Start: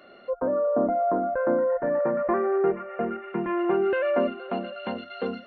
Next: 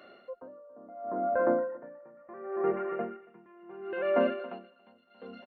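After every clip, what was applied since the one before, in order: HPF 120 Hz 6 dB/oct; on a send: feedback echo 0.278 s, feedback 38%, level -11 dB; on the sum: dB-linear tremolo 0.71 Hz, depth 27 dB; gain -1.5 dB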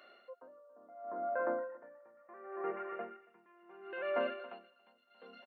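HPF 960 Hz 6 dB/oct; gain -2.5 dB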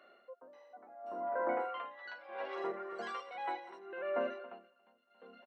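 echoes that change speed 0.532 s, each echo +6 st, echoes 3; high shelf 2600 Hz -11 dB

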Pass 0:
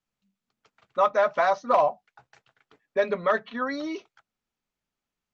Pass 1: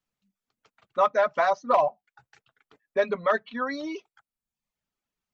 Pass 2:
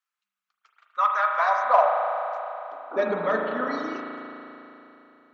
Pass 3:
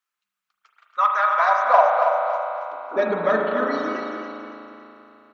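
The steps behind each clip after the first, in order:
reverb removal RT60 0.72 s
painted sound noise, 2.91–3.8, 270–1500 Hz -35 dBFS; high-pass sweep 1300 Hz -> 100 Hz, 1.15–3.94; spring tank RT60 3.3 s, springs 36 ms, chirp 50 ms, DRR 0.5 dB; gain -3 dB
feedback echo 0.279 s, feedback 39%, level -7 dB; gain +3 dB

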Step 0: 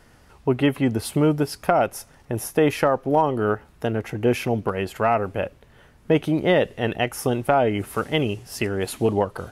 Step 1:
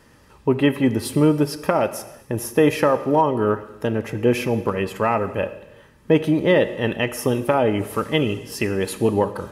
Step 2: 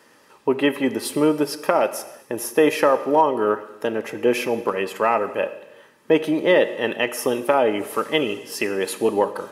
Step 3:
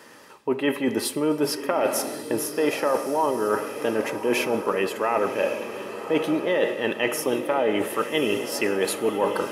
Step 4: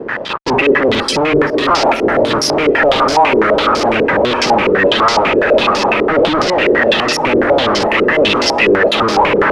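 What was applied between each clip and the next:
notch comb 720 Hz; reverb, pre-delay 3 ms, DRR 11 dB; gain +2.5 dB
HPF 330 Hz 12 dB/oct; gain +1.5 dB
reverse; compressor, threshold -26 dBFS, peak gain reduction 14 dB; reverse; diffused feedback echo 1.116 s, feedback 44%, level -10 dB; gain +5.5 dB
bin magnitudes rounded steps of 30 dB; fuzz box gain 46 dB, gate -50 dBFS; stepped low-pass 12 Hz 420–5100 Hz; gain -1.5 dB

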